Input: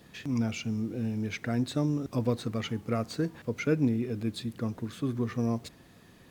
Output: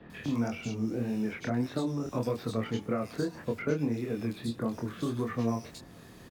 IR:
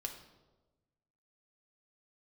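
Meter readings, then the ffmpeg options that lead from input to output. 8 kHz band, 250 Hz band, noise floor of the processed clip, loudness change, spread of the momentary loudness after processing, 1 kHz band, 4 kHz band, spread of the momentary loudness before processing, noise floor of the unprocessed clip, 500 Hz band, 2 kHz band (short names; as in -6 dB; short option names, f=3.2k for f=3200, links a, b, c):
-2.0 dB, -1.5 dB, -51 dBFS, -1.5 dB, 4 LU, +2.0 dB, -4.0 dB, 6 LU, -56 dBFS, +0.5 dB, -1.0 dB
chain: -filter_complex "[0:a]acrossover=split=2700[a][b];[b]adelay=100[c];[a][c]amix=inputs=2:normalize=0,acrossover=split=250|540|1500[d][e][f][g];[d]acompressor=threshold=-42dB:ratio=4[h];[e]acompressor=threshold=-39dB:ratio=4[i];[f]acompressor=threshold=-41dB:ratio=4[j];[g]acompressor=threshold=-52dB:ratio=4[k];[h][i][j][k]amix=inputs=4:normalize=0,flanger=delay=22.5:depth=4.9:speed=1.7,volume=8.5dB"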